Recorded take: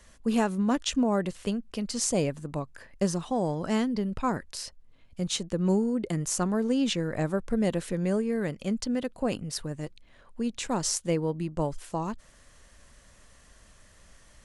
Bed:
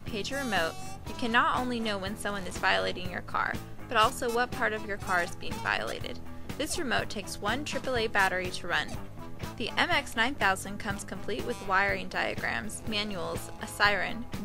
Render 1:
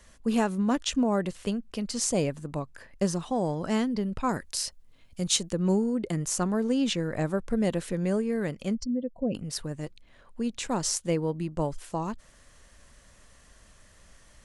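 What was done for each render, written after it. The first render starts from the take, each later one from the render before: 4.29–5.53 s: treble shelf 4 kHz +9.5 dB; 8.75–9.35 s: spectral contrast enhancement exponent 2.2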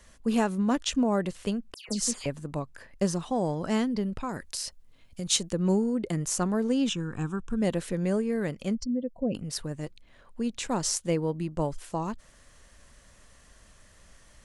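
1.74–2.26 s: phase dispersion lows, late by 139 ms, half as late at 2.4 kHz; 4.10–5.29 s: compression 3:1, threshold -30 dBFS; 6.89–7.62 s: static phaser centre 3 kHz, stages 8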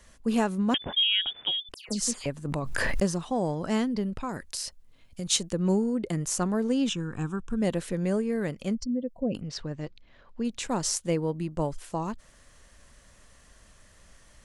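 0.74–1.69 s: frequency inversion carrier 3.5 kHz; 2.45–3.10 s: swell ahead of each attack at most 22 dB/s; 9.41–10.45 s: low-pass 5.7 kHz 24 dB/octave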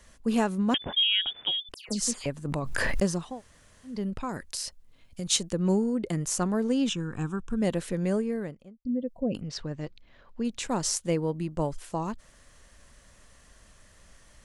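3.30–3.95 s: room tone, crossfade 0.24 s; 8.12–8.85 s: studio fade out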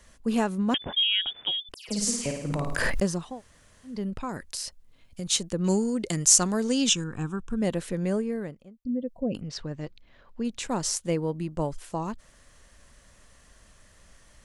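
1.75–2.90 s: flutter echo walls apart 9.2 m, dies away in 0.78 s; 5.64–7.04 s: peaking EQ 6.4 kHz +14.5 dB 2.2 oct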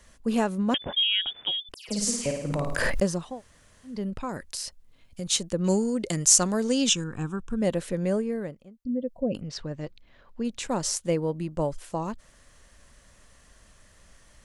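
dynamic bell 560 Hz, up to +5 dB, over -47 dBFS, Q 4.2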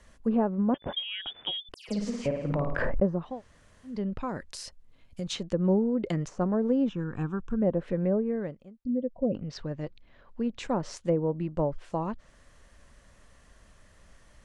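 treble shelf 3.4 kHz -8 dB; low-pass that closes with the level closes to 910 Hz, closed at -21.5 dBFS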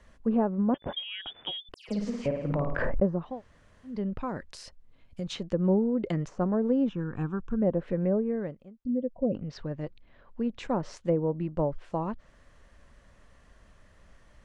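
treble shelf 5.5 kHz -11 dB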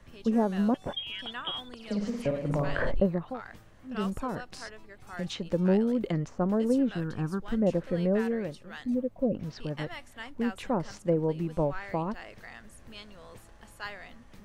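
add bed -15.5 dB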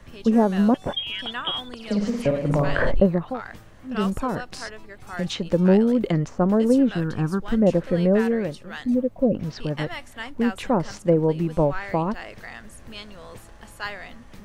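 trim +7.5 dB

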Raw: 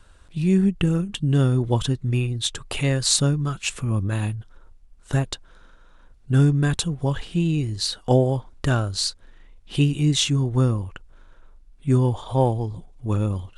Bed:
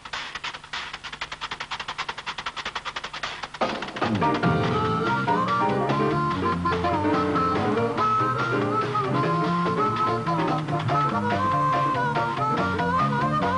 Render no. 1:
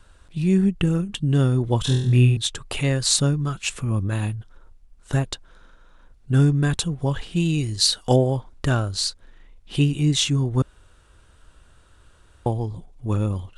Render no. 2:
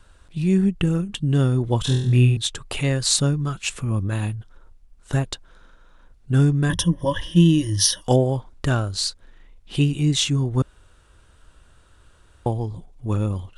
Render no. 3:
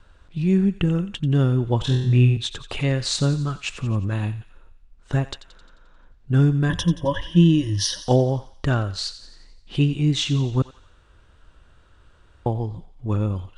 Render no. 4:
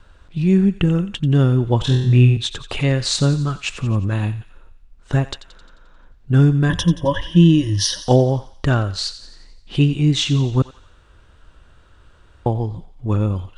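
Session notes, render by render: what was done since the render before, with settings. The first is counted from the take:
1.83–2.37 s: flutter echo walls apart 4.1 m, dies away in 0.6 s; 7.36–8.16 s: treble shelf 2.6 kHz +9 dB; 10.62–12.46 s: room tone
6.69–8.03 s: rippled EQ curve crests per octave 1.2, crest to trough 18 dB
distance through air 100 m; thinning echo 88 ms, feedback 58%, high-pass 1.1 kHz, level -13 dB
trim +4 dB; peak limiter -3 dBFS, peak gain reduction 1 dB

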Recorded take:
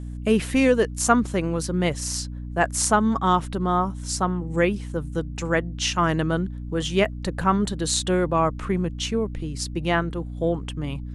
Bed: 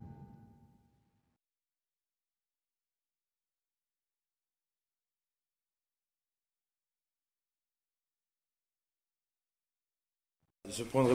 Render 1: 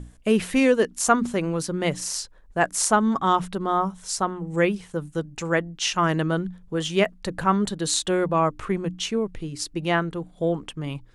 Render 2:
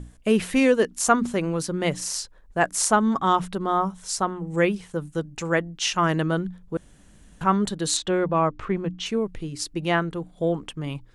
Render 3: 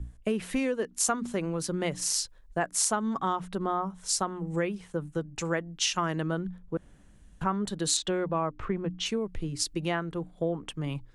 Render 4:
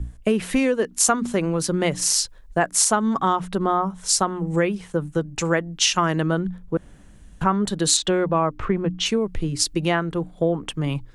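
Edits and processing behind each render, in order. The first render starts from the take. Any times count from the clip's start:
hum notches 60/120/180/240/300 Hz
6.77–7.41 s: room tone; 7.97–9.06 s: distance through air 110 m
compression 6:1, threshold -26 dBFS, peak gain reduction 13.5 dB; three bands expanded up and down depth 40%
trim +8.5 dB; peak limiter -2 dBFS, peak gain reduction 3 dB

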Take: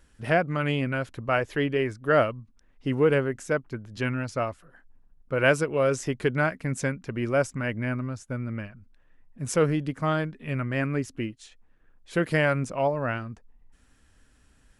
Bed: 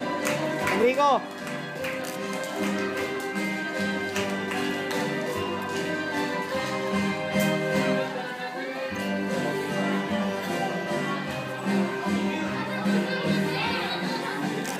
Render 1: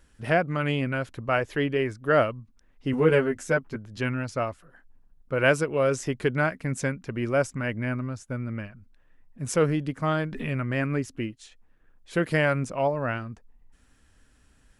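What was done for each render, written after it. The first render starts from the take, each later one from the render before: 2.92–3.76 s: doubling 12 ms -2 dB; 10.21–11.07 s: swell ahead of each attack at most 48 dB/s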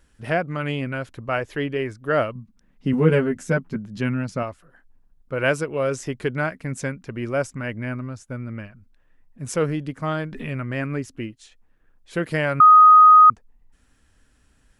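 2.35–4.43 s: peaking EQ 190 Hz +14 dB 0.72 oct; 12.60–13.30 s: bleep 1.25 kHz -6.5 dBFS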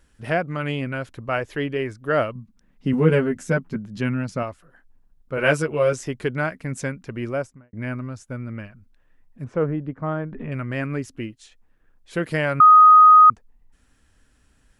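5.36–5.93 s: doubling 13 ms -2 dB; 7.21–7.73 s: studio fade out; 9.44–10.52 s: low-pass 1.3 kHz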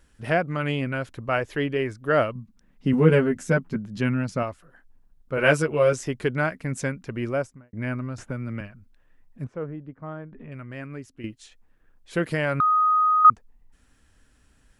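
8.18–8.61 s: three bands compressed up and down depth 70%; 9.47–11.24 s: gain -10 dB; 12.32–13.25 s: compression, threshold -19 dBFS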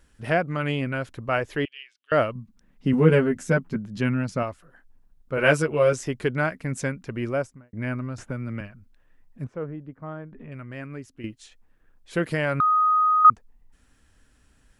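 1.65–2.12 s: ladder band-pass 3.2 kHz, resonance 65%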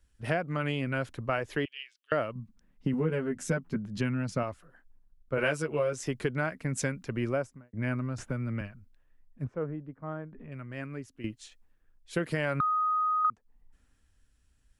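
compression 10:1, threshold -26 dBFS, peak gain reduction 16.5 dB; three bands expanded up and down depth 40%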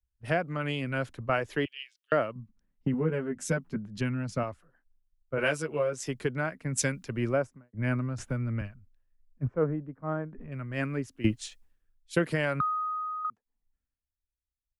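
gain riding 2 s; three bands expanded up and down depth 70%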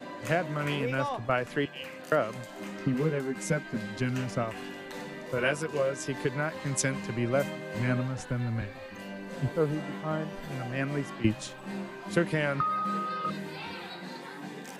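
add bed -12.5 dB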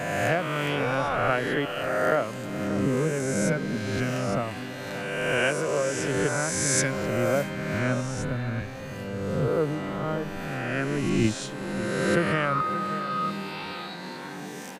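reverse spectral sustain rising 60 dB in 1.96 s; echo from a far wall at 100 m, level -12 dB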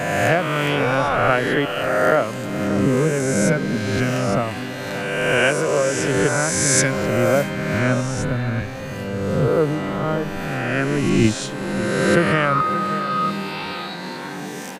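trim +7 dB; peak limiter -2 dBFS, peak gain reduction 0.5 dB

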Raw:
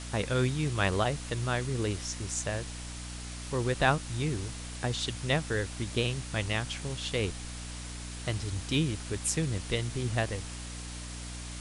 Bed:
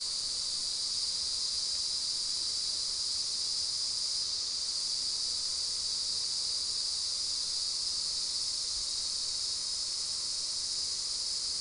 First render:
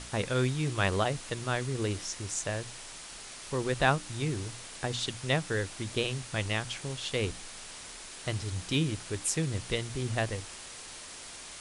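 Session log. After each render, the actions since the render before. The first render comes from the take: hum notches 60/120/180/240/300 Hz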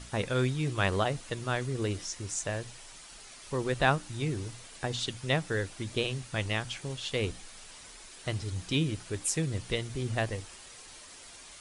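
noise reduction 7 dB, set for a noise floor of -46 dBFS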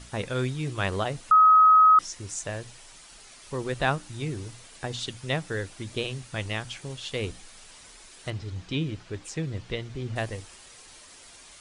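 1.31–1.99 s: bleep 1.27 kHz -12.5 dBFS; 8.30–10.16 s: distance through air 110 m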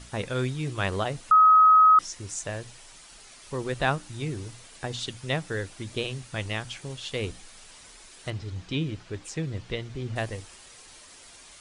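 no audible change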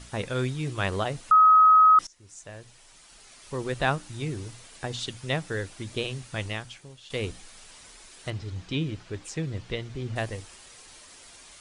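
2.07–3.64 s: fade in linear, from -21.5 dB; 6.45–7.10 s: fade out quadratic, to -12 dB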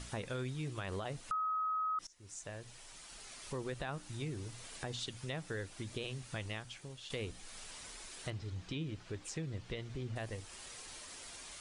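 peak limiter -20.5 dBFS, peak gain reduction 9 dB; compression 2:1, threshold -45 dBFS, peak gain reduction 12 dB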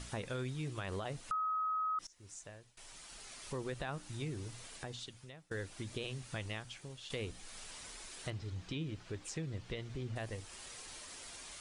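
2.21–2.77 s: fade out, to -22 dB; 4.55–5.51 s: fade out, to -24 dB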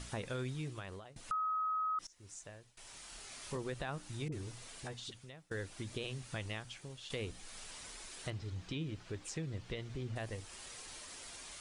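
0.55–1.16 s: fade out, to -21.5 dB; 2.83–3.57 s: doubling 27 ms -5 dB; 4.28–5.24 s: phase dispersion highs, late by 43 ms, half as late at 600 Hz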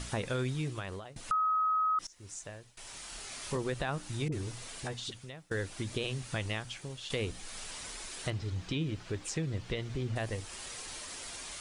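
trim +6.5 dB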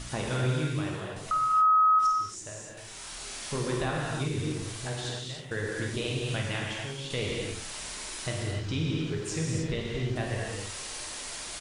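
doubling 49 ms -10.5 dB; gated-style reverb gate 330 ms flat, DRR -2.5 dB

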